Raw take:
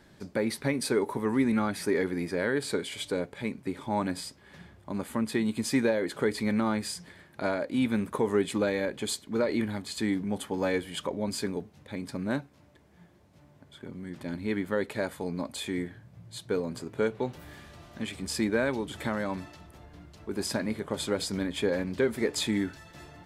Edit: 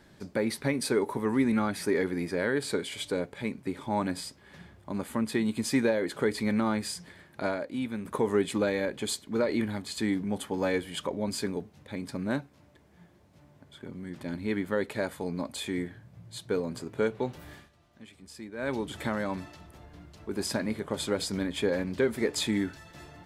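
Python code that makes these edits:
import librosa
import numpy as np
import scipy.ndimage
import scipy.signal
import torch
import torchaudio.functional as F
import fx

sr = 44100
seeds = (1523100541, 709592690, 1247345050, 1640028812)

y = fx.edit(x, sr, fx.fade_out_to(start_s=7.42, length_s=0.63, curve='qua', floor_db=-7.5),
    fx.fade_down_up(start_s=17.53, length_s=1.2, db=-15.0, fade_s=0.17), tone=tone)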